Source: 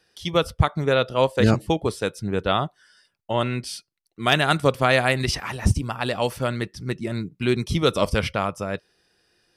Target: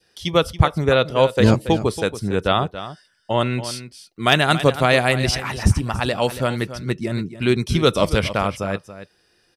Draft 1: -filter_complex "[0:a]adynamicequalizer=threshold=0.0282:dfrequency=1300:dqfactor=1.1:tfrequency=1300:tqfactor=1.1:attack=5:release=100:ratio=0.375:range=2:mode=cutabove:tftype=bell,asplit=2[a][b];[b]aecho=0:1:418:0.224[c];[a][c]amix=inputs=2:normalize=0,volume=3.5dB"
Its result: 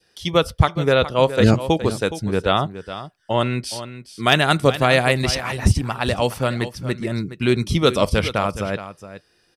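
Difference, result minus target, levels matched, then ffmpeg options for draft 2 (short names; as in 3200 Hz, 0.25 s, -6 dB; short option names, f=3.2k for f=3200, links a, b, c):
echo 0.138 s late
-filter_complex "[0:a]adynamicequalizer=threshold=0.0282:dfrequency=1300:dqfactor=1.1:tfrequency=1300:tqfactor=1.1:attack=5:release=100:ratio=0.375:range=2:mode=cutabove:tftype=bell,asplit=2[a][b];[b]aecho=0:1:280:0.224[c];[a][c]amix=inputs=2:normalize=0,volume=3.5dB"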